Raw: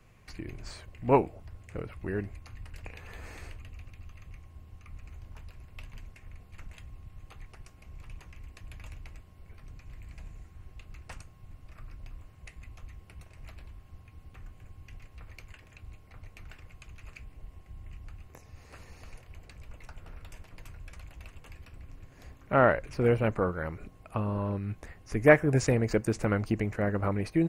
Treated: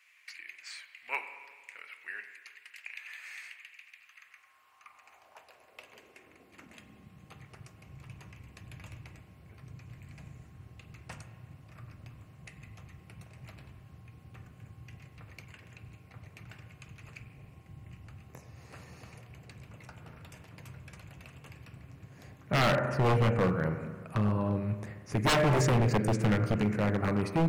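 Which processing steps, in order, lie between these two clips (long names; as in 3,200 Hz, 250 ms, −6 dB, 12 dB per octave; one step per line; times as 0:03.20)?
high-pass filter sweep 2,100 Hz → 130 Hz, 0:03.88–0:07.56
spring reverb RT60 1.6 s, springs 38/43 ms, chirp 65 ms, DRR 8 dB
wave folding −19.5 dBFS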